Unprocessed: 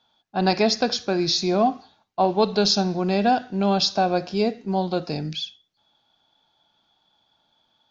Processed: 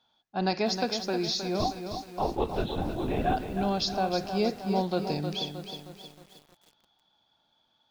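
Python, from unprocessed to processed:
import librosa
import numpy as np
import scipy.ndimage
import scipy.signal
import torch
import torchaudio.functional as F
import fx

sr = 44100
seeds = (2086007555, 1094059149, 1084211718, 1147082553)

y = fx.rider(x, sr, range_db=3, speed_s=0.5)
y = fx.lpc_vocoder(y, sr, seeds[0], excitation='whisper', order=16, at=(1.6, 3.37))
y = fx.echo_crushed(y, sr, ms=313, feedback_pct=55, bits=7, wet_db=-7.5)
y = y * 10.0 ** (-7.0 / 20.0)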